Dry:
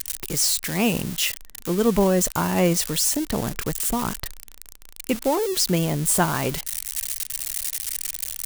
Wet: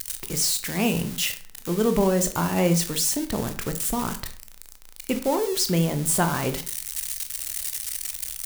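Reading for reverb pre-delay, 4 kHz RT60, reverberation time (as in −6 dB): 16 ms, 0.35 s, 0.50 s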